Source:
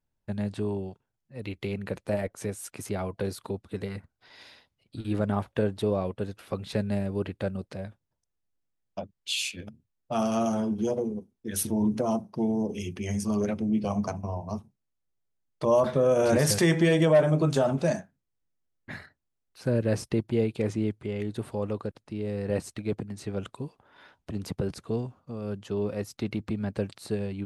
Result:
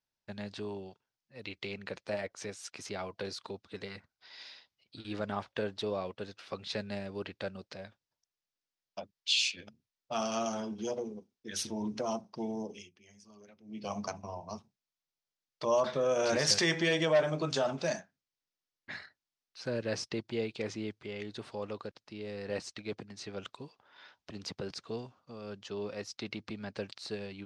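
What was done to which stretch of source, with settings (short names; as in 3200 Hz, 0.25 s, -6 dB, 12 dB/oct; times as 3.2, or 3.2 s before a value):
12.61–13.92 dip -20.5 dB, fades 0.29 s
whole clip: Chebyshev low-pass 5400 Hz, order 3; tilt +3.5 dB/oct; gain -3.5 dB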